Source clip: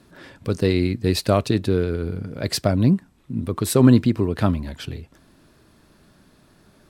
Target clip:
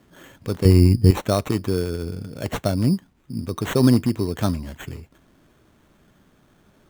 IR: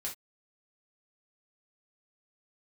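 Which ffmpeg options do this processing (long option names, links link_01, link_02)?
-filter_complex "[0:a]asettb=1/sr,asplit=3[link_01][link_02][link_03];[link_01]atrim=end=0.654[link_04];[link_02]atrim=start=0.65:end=1.11,asetpts=PTS-STARTPTS,afade=type=in:duration=0.004:curve=qsin,afade=type=out:start_time=0.456:duration=0.004:curve=qsin,aemphasis=mode=reproduction:type=riaa[link_05];[link_03]atrim=start=1.106[link_06];[link_04][link_05]acrossfade=duration=0.004:curve1=hsin:curve2=qsin[link_07];[link_07][link_06]acrossfade=duration=0.004:curve1=qsin:curve2=hsin,acrusher=samples=9:mix=1:aa=0.000001,volume=-2.5dB"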